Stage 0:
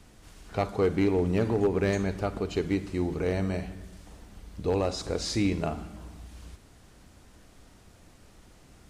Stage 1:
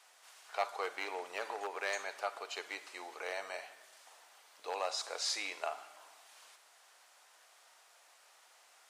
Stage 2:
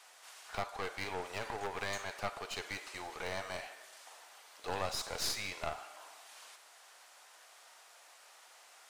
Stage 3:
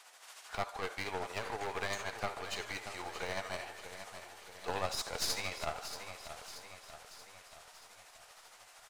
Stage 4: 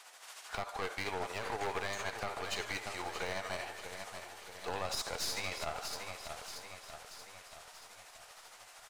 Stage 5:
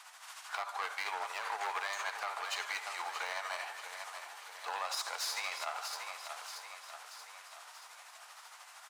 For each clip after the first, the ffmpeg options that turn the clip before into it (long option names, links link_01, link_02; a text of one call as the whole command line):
ffmpeg -i in.wav -af "highpass=frequency=700:width=0.5412,highpass=frequency=700:width=1.3066,volume=-1.5dB" out.wav
ffmpeg -i in.wav -af "alimiter=level_in=2dB:limit=-24dB:level=0:latency=1:release=428,volume=-2dB,aeval=exprs='clip(val(0),-1,0.00398)':channel_layout=same,volume=4.5dB" out.wav
ffmpeg -i in.wav -af "tremolo=f=13:d=0.44,aecho=1:1:631|1262|1893|2524|3155|3786:0.299|0.161|0.0871|0.047|0.0254|0.0137,volume=2.5dB" out.wav
ffmpeg -i in.wav -af "alimiter=level_in=2.5dB:limit=-24dB:level=0:latency=1:release=67,volume=-2.5dB,volume=2.5dB" out.wav
ffmpeg -i in.wav -af "highpass=frequency=980:width_type=q:width=1.6" out.wav